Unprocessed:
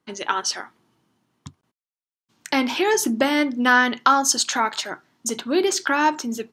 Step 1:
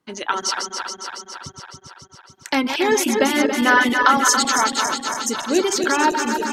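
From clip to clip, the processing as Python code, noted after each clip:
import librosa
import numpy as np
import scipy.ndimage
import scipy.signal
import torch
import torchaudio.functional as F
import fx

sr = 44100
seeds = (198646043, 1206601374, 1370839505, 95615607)

y = fx.reverse_delay_fb(x, sr, ms=139, feedback_pct=81, wet_db=-5)
y = fx.dereverb_blind(y, sr, rt60_s=0.58)
y = y * 10.0 ** (1.0 / 20.0)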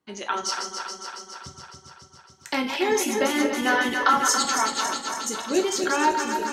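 y = fx.rev_gated(x, sr, seeds[0], gate_ms=120, shape='falling', drr_db=3.5)
y = y * 10.0 ** (-6.5 / 20.0)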